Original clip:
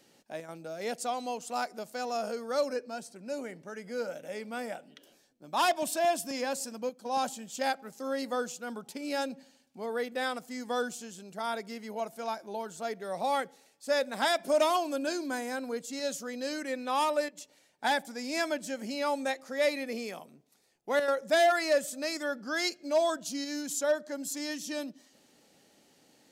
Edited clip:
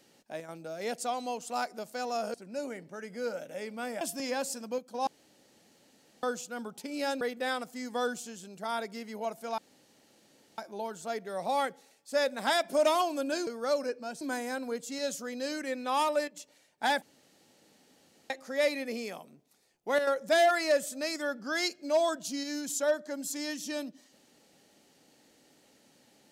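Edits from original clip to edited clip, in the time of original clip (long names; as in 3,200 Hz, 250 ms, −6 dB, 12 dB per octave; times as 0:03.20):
0:02.34–0:03.08: move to 0:15.22
0:04.75–0:06.12: remove
0:07.18–0:08.34: fill with room tone
0:09.32–0:09.96: remove
0:12.33: splice in room tone 1.00 s
0:18.03–0:19.31: fill with room tone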